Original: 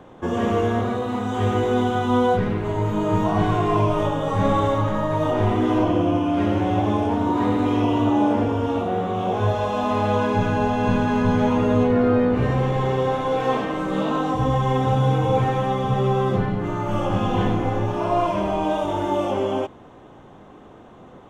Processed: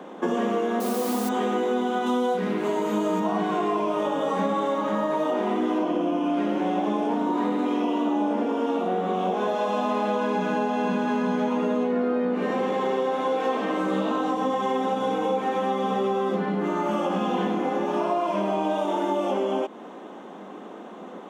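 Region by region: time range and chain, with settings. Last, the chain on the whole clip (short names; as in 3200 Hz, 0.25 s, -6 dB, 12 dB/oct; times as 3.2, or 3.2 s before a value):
0.8–1.29 Gaussian blur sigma 4.9 samples + requantised 6-bit, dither triangular
2.06–3.2 high shelf 3900 Hz +8.5 dB + doubler 32 ms -12.5 dB
whole clip: elliptic high-pass 190 Hz, stop band 40 dB; compressor, threshold -28 dBFS; gain +6 dB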